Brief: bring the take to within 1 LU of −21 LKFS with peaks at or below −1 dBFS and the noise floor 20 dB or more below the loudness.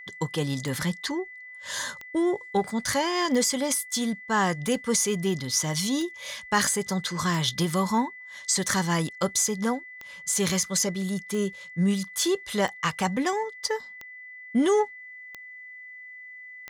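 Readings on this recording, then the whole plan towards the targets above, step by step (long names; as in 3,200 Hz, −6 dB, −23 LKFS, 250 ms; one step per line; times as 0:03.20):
number of clicks 13; interfering tone 2,000 Hz; level of the tone −41 dBFS; integrated loudness −26.5 LKFS; sample peak −10.5 dBFS; target loudness −21.0 LKFS
→ click removal
notch filter 2,000 Hz, Q 30
level +5.5 dB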